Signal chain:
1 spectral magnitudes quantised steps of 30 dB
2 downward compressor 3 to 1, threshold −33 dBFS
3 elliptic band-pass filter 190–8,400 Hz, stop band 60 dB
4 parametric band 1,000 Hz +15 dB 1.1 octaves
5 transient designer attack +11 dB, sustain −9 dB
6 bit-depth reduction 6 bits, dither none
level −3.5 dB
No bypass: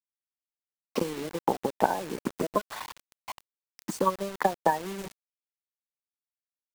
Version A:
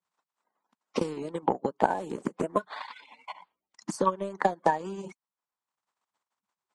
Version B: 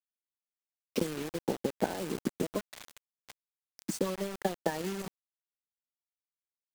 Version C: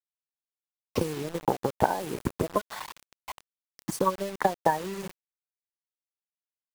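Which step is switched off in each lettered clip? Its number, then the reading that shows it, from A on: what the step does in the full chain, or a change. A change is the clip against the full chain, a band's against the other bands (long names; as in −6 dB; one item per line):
6, distortion level −16 dB
4, 1 kHz band −11.0 dB
3, 125 Hz band +4.5 dB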